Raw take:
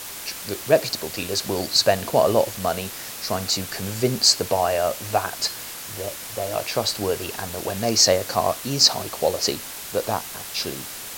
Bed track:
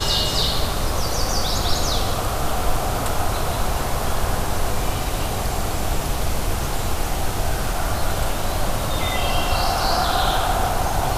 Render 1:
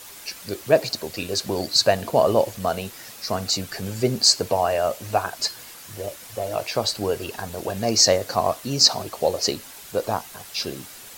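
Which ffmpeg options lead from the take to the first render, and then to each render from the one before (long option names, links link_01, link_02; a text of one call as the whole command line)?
ffmpeg -i in.wav -af "afftdn=noise_reduction=8:noise_floor=-35" out.wav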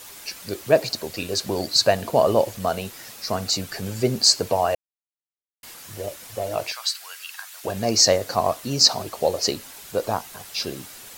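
ffmpeg -i in.wav -filter_complex "[0:a]asettb=1/sr,asplit=3[link_01][link_02][link_03];[link_01]atrim=end=6.724[link_04];[link_02]atrim=start=6.72:end=7.64,asetpts=PTS-STARTPTS,afade=type=in:duration=0.004:curve=qsin,afade=type=out:start_time=0.916:duration=0.004:curve=qsin,highpass=frequency=1300:width=0.5412,highpass=frequency=1300:width=1.3066[link_05];[link_03]atrim=start=7.636[link_06];[link_04][link_05]acrossfade=duration=0.004:curve1=hsin:curve2=qsin[link_07];[link_07][link_06]acrossfade=duration=0.004:curve1=qsin:curve2=hsin,asplit=3[link_08][link_09][link_10];[link_08]atrim=end=4.75,asetpts=PTS-STARTPTS,afade=type=out:start_time=4.746:duration=0.004:curve=hsin[link_11];[link_09]atrim=start=4.75:end=5.63,asetpts=PTS-STARTPTS,volume=0[link_12];[link_10]atrim=start=5.63,asetpts=PTS-STARTPTS,afade=type=in:duration=0.004:curve=hsin[link_13];[link_11][link_12][link_13]concat=n=3:v=0:a=1" out.wav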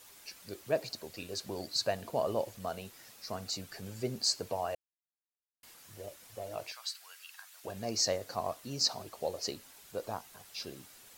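ffmpeg -i in.wav -af "volume=-14dB" out.wav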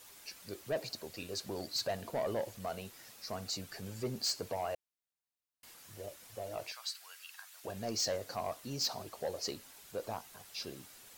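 ffmpeg -i in.wav -af "asoftclip=type=tanh:threshold=-28.5dB" out.wav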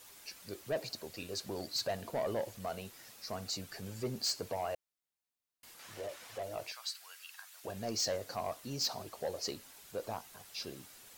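ffmpeg -i in.wav -filter_complex "[0:a]asettb=1/sr,asplit=3[link_01][link_02][link_03];[link_01]atrim=end=5.794[link_04];[link_02]atrim=start=5.79:end=6.43,asetpts=PTS-STARTPTS,afade=type=in:duration=0.004:curve=qsin,afade=type=out:start_time=0.636:duration=0.004:curve=qsin,asplit=2[link_05][link_06];[link_06]highpass=frequency=720:poles=1,volume=17dB,asoftclip=type=tanh:threshold=-32dB[link_07];[link_05][link_07]amix=inputs=2:normalize=0,lowpass=frequency=2600:poles=1,volume=-6dB[link_08];[link_03]atrim=start=6.426[link_09];[link_04][link_08]acrossfade=duration=0.004:curve1=hsin:curve2=qsin[link_10];[link_10][link_09]acrossfade=duration=0.004:curve1=qsin:curve2=hsin" out.wav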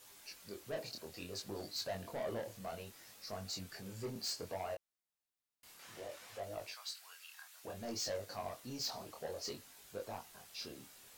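ffmpeg -i in.wav -af "asoftclip=type=tanh:threshold=-31.5dB,flanger=delay=19.5:depth=6.9:speed=0.61" out.wav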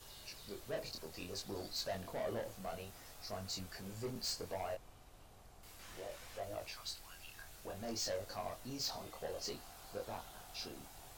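ffmpeg -i in.wav -i bed.wav -filter_complex "[1:a]volume=-37dB[link_01];[0:a][link_01]amix=inputs=2:normalize=0" out.wav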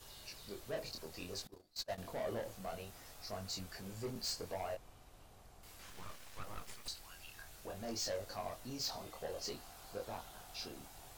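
ffmpeg -i in.wav -filter_complex "[0:a]asettb=1/sr,asplit=3[link_01][link_02][link_03];[link_01]atrim=end=1.474[link_04];[link_02]atrim=start=1.47:end=1.98,asetpts=PTS-STARTPTS,afade=type=in:duration=0.004:curve=qsin,afade=type=out:start_time=0.506:duration=0.004:curve=qsin,agate=range=-25dB:threshold=-41dB:ratio=16:release=100:detection=peak[link_05];[link_03]atrim=start=1.976[link_06];[link_04][link_05]acrossfade=duration=0.004:curve1=hsin:curve2=qsin[link_07];[link_07][link_06]acrossfade=duration=0.004:curve1=qsin:curve2=hsin,asettb=1/sr,asplit=3[link_08][link_09][link_10];[link_08]atrim=end=5.904[link_11];[link_09]atrim=start=5.9:end=6.88,asetpts=PTS-STARTPTS,afade=type=in:duration=0.004:curve=qsin,afade=type=out:start_time=0.976:duration=0.004:curve=qsin,aeval=exprs='abs(val(0))':channel_layout=same[link_12];[link_10]atrim=start=6.876[link_13];[link_11][link_12]acrossfade=duration=0.004:curve1=hsin:curve2=qsin[link_14];[link_14][link_13]acrossfade=duration=0.004:curve1=qsin:curve2=hsin" out.wav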